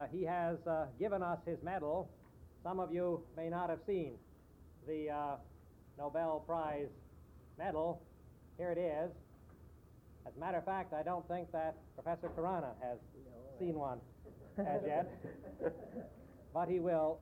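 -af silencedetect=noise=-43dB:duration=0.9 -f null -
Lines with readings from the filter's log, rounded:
silence_start: 9.11
silence_end: 10.26 | silence_duration: 1.15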